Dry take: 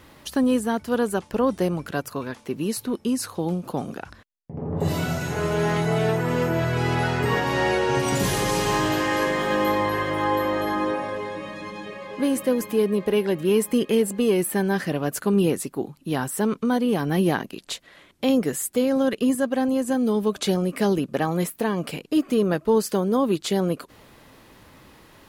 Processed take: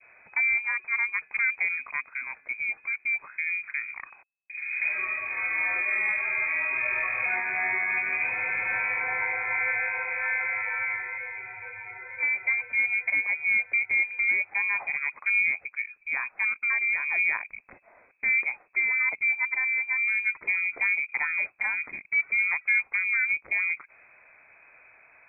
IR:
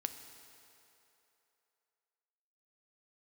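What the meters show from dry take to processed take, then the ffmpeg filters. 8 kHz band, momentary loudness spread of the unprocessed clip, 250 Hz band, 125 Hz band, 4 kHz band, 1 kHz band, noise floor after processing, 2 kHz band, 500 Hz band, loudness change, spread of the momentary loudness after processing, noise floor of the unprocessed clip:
under -40 dB, 10 LU, under -35 dB, under -30 dB, under -40 dB, -11.0 dB, -60 dBFS, +9.0 dB, -25.5 dB, -2.0 dB, 9 LU, -52 dBFS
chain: -af "adynamicequalizer=threshold=0.0126:dfrequency=1400:dqfactor=0.99:tfrequency=1400:tqfactor=0.99:attack=5:release=100:ratio=0.375:range=1.5:mode=cutabove:tftype=bell,lowpass=f=2.2k:t=q:w=0.5098,lowpass=f=2.2k:t=q:w=0.6013,lowpass=f=2.2k:t=q:w=0.9,lowpass=f=2.2k:t=q:w=2.563,afreqshift=-2600,volume=-4.5dB"

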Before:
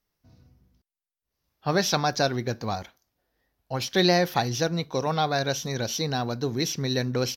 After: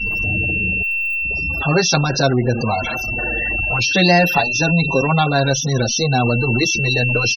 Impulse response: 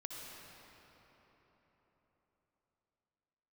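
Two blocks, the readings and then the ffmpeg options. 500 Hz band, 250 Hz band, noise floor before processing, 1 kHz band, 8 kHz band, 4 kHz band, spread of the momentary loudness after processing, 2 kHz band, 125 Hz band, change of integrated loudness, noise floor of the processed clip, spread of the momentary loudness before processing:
+7.0 dB, +9.0 dB, under -85 dBFS, +7.5 dB, +10.0 dB, +7.5 dB, 6 LU, +16.0 dB, +11.5 dB, +9.5 dB, -23 dBFS, 10 LU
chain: -filter_complex "[0:a]aeval=exprs='val(0)+0.5*0.0841*sgn(val(0))':c=same,aeval=exprs='val(0)+0.0562*sin(2*PI*2700*n/s)':c=same,afftfilt=real='re*gte(hypot(re,im),0.0708)':imag='im*gte(hypot(re,im),0.0708)':win_size=1024:overlap=0.75,asplit=2[a][b];[b]adelay=6.2,afreqshift=-0.3[c];[a][c]amix=inputs=2:normalize=1,volume=7.5dB"

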